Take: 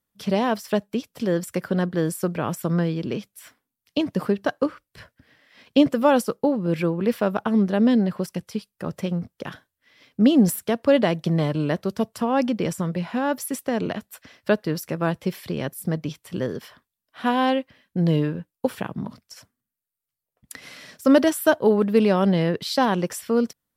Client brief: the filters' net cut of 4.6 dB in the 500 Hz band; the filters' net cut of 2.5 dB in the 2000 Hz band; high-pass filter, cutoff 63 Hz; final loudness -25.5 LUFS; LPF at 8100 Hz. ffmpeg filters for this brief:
-af "highpass=63,lowpass=8.1k,equalizer=f=500:t=o:g=-5.5,equalizer=f=2k:t=o:g=-3"

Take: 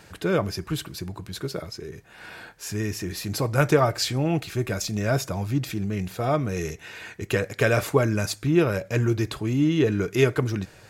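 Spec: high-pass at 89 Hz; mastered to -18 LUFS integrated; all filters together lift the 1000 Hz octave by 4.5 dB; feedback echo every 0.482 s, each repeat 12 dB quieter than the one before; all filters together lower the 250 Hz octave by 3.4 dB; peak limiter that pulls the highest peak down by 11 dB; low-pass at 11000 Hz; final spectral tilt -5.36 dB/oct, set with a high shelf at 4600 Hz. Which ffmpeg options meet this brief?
-af "highpass=89,lowpass=11k,equalizer=f=250:t=o:g=-5.5,equalizer=f=1k:t=o:g=7,highshelf=f=4.6k:g=-7.5,alimiter=limit=-14dB:level=0:latency=1,aecho=1:1:482|964|1446:0.251|0.0628|0.0157,volume=10dB"

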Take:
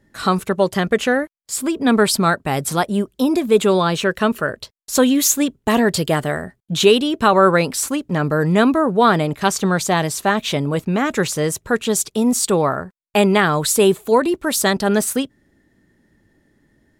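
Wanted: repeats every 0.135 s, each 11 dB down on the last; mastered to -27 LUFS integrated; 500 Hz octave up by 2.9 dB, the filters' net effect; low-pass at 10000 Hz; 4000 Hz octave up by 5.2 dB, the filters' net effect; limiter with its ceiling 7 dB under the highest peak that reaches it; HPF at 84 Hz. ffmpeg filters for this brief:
-af "highpass=84,lowpass=10k,equalizer=f=500:t=o:g=3.5,equalizer=f=4k:t=o:g=6.5,alimiter=limit=-5.5dB:level=0:latency=1,aecho=1:1:135|270|405:0.282|0.0789|0.0221,volume=-10dB"

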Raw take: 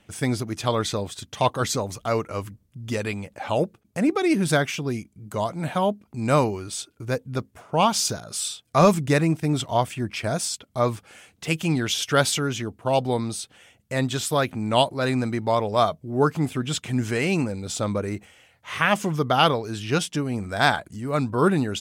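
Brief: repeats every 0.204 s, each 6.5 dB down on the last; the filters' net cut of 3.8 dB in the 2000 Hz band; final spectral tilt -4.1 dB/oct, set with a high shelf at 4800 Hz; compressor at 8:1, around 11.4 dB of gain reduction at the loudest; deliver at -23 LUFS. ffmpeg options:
-af "equalizer=f=2k:t=o:g=-7,highshelf=f=4.8k:g=9,acompressor=threshold=-24dB:ratio=8,aecho=1:1:204|408|612|816|1020|1224:0.473|0.222|0.105|0.0491|0.0231|0.0109,volume=5.5dB"

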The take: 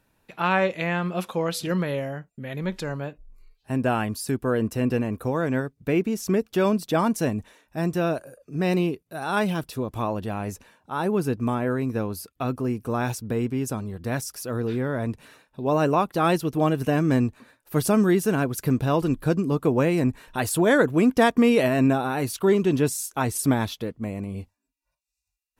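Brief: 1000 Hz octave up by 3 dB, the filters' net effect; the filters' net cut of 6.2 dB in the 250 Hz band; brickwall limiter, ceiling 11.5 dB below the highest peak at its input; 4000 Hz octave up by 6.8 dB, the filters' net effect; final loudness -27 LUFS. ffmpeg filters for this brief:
-af "equalizer=f=250:t=o:g=-8.5,equalizer=f=1k:t=o:g=4,equalizer=f=4k:t=o:g=8.5,volume=1.5dB,alimiter=limit=-15.5dB:level=0:latency=1"

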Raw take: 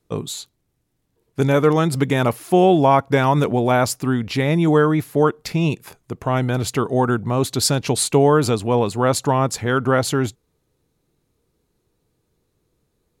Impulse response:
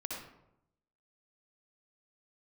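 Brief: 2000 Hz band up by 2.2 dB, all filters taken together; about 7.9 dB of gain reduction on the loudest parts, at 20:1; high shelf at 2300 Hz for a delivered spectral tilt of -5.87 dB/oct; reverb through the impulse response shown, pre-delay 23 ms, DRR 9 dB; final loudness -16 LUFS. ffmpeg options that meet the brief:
-filter_complex "[0:a]equalizer=f=2k:t=o:g=6.5,highshelf=f=2.3k:g=-7,acompressor=threshold=-17dB:ratio=20,asplit=2[a][b];[1:a]atrim=start_sample=2205,adelay=23[c];[b][c]afir=irnorm=-1:irlink=0,volume=-10dB[d];[a][d]amix=inputs=2:normalize=0,volume=7dB"

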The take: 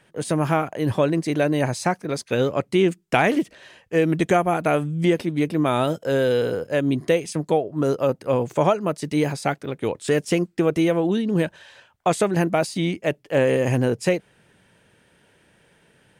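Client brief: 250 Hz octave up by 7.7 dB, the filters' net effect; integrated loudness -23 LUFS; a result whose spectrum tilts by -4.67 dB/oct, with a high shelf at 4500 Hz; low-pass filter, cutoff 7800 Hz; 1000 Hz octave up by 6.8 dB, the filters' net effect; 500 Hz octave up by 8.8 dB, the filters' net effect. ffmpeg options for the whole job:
-af "lowpass=7.8k,equalizer=f=250:t=o:g=7.5,equalizer=f=500:t=o:g=7,equalizer=f=1k:t=o:g=5.5,highshelf=f=4.5k:g=7,volume=-8.5dB"

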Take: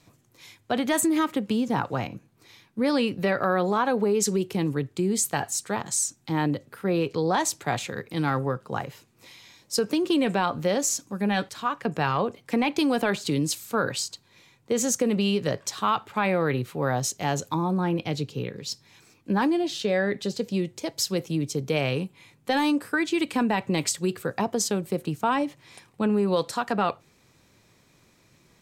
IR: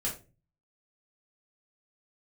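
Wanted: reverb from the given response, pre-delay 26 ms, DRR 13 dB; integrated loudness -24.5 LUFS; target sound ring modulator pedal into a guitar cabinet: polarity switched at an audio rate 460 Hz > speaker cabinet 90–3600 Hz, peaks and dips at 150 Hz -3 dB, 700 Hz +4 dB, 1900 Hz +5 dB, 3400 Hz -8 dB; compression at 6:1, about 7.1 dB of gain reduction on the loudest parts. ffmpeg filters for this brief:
-filter_complex "[0:a]acompressor=threshold=-27dB:ratio=6,asplit=2[a][b];[1:a]atrim=start_sample=2205,adelay=26[c];[b][c]afir=irnorm=-1:irlink=0,volume=-17dB[d];[a][d]amix=inputs=2:normalize=0,aeval=exprs='val(0)*sgn(sin(2*PI*460*n/s))':c=same,highpass=90,equalizer=f=150:t=q:w=4:g=-3,equalizer=f=700:t=q:w=4:g=4,equalizer=f=1.9k:t=q:w=4:g=5,equalizer=f=3.4k:t=q:w=4:g=-8,lowpass=f=3.6k:w=0.5412,lowpass=f=3.6k:w=1.3066,volume=7dB"

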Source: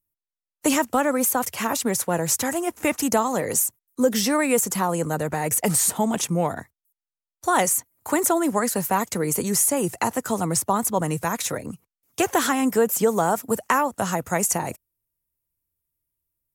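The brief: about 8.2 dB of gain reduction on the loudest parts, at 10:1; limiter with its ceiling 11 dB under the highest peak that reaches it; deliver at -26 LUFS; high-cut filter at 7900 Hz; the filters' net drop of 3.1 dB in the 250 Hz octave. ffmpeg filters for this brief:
-af "lowpass=7.9k,equalizer=f=250:t=o:g=-4,acompressor=threshold=-24dB:ratio=10,volume=6.5dB,alimiter=limit=-16dB:level=0:latency=1"

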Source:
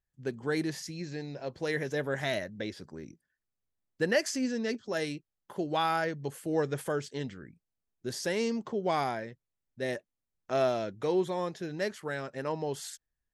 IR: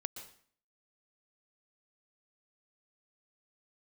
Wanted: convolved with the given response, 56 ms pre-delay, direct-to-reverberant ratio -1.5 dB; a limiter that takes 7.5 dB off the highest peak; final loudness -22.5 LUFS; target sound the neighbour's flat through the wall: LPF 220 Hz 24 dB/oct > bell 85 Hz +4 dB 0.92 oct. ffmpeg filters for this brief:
-filter_complex "[0:a]alimiter=limit=-22.5dB:level=0:latency=1,asplit=2[a][b];[1:a]atrim=start_sample=2205,adelay=56[c];[b][c]afir=irnorm=-1:irlink=0,volume=3dB[d];[a][d]amix=inputs=2:normalize=0,lowpass=f=220:w=0.5412,lowpass=f=220:w=1.3066,equalizer=f=85:t=o:w=0.92:g=4,volume=17.5dB"

